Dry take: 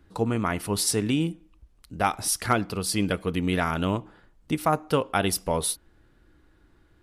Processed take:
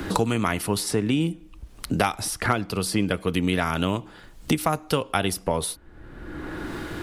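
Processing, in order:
multiband upward and downward compressor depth 100%
level +1 dB

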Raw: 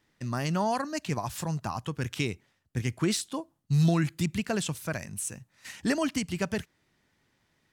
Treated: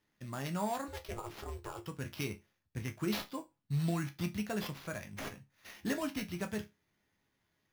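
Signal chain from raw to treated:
0:00.88–0:01.83: ring modulation 230 Hz
sample-rate reduction 8,300 Hz, jitter 0%
resonators tuned to a chord C#2 major, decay 0.21 s
level +1 dB

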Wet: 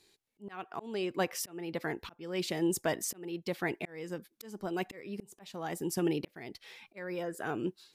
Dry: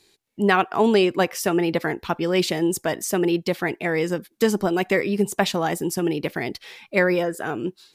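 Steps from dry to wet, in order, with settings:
volume swells 636 ms
level −7 dB

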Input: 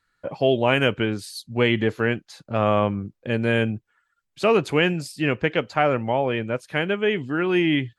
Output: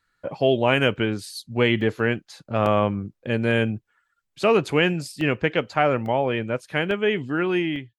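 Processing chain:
fade-out on the ending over 0.56 s
regular buffer underruns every 0.85 s, samples 64, zero, from 0:00.96

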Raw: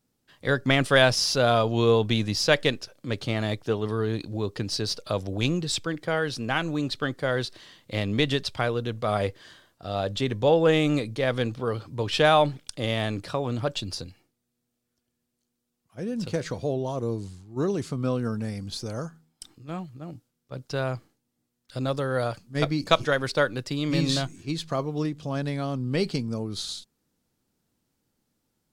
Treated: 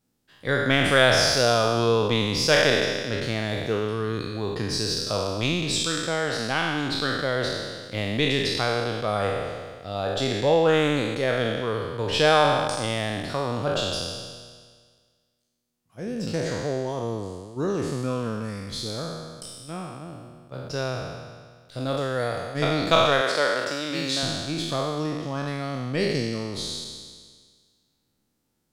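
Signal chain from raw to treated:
peak hold with a decay on every bin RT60 1.71 s
0:23.21–0:24.23: Bessel high-pass filter 330 Hz, order 2
level −2 dB

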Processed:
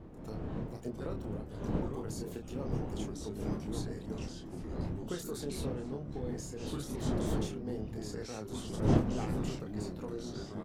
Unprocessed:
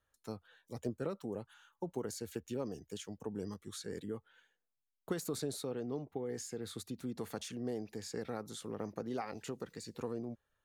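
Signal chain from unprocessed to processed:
wind on the microphone 290 Hz −37 dBFS
delay with pitch and tempo change per echo 652 ms, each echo −3 semitones, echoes 3
double-tracking delay 28 ms −5 dB
level −3 dB
MP3 96 kbit/s 48,000 Hz

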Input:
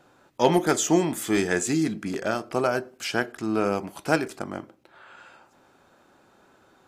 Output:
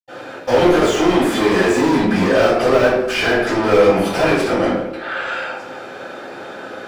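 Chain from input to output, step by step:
de-essing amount 90%
parametric band 1,000 Hz −11.5 dB 0.63 octaves
mid-hump overdrive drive 37 dB, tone 2,300 Hz, clips at −9 dBFS
convolution reverb RT60 0.85 s, pre-delay 76 ms, DRR −60 dB
level −5.5 dB

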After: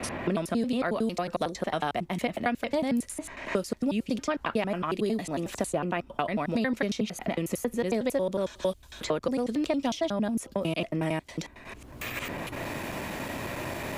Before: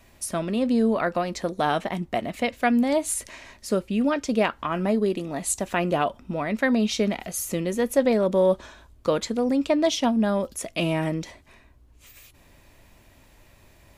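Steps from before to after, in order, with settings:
slices reordered back to front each 91 ms, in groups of 3
multiband upward and downward compressor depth 100%
level −5.5 dB

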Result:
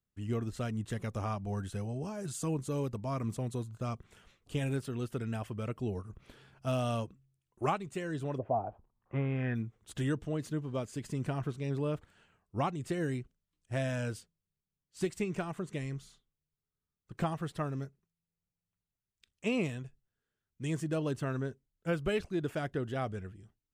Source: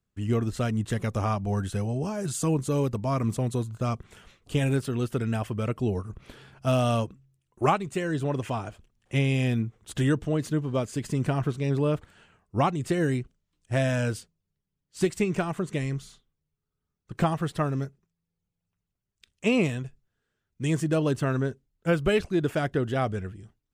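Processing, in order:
0:08.37–0:09.54: low-pass with resonance 590 Hz → 1,700 Hz, resonance Q 4.9
level −8.5 dB

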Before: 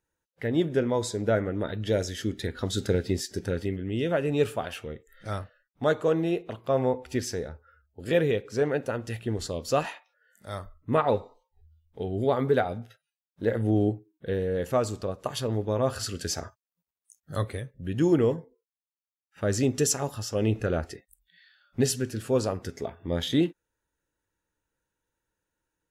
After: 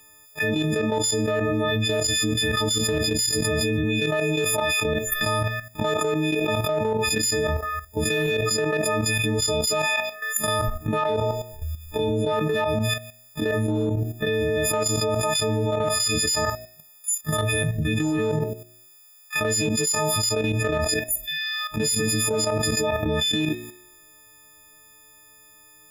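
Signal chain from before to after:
every partial snapped to a pitch grid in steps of 6 semitones
parametric band 2,900 Hz +12.5 dB 0.27 octaves
hum removal 57.34 Hz, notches 14
output level in coarse steps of 12 dB
tuned comb filter 360 Hz, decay 0.77 s, mix 50%
in parallel at −4 dB: soft clipping −28.5 dBFS, distortion −9 dB
on the sum: envelope flattener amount 100%
level −6.5 dB

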